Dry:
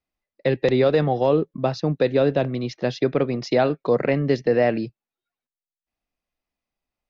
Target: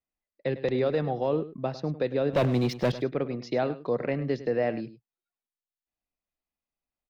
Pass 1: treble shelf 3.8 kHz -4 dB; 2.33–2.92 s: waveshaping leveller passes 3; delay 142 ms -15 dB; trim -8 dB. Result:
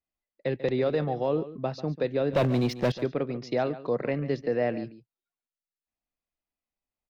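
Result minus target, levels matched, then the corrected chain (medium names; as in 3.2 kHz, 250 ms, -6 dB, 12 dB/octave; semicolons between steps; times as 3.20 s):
echo 39 ms late
treble shelf 3.8 kHz -4 dB; 2.33–2.92 s: waveshaping leveller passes 3; delay 103 ms -15 dB; trim -8 dB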